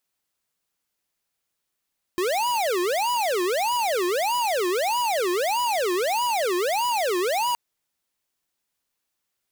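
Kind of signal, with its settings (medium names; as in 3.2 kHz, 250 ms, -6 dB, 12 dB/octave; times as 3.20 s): siren wail 351–982 Hz 1.6 per s square -23.5 dBFS 5.37 s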